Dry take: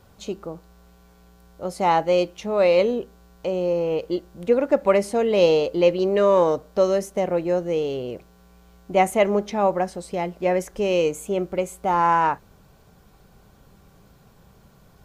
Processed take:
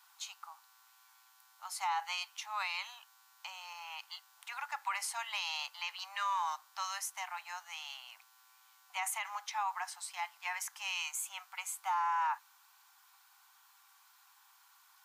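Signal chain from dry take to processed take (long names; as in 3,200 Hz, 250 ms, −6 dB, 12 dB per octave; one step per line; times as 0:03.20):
Butterworth high-pass 840 Hz 72 dB per octave
high-shelf EQ 5,700 Hz +5.5 dB
brickwall limiter −22.5 dBFS, peak gain reduction 10.5 dB
level −4 dB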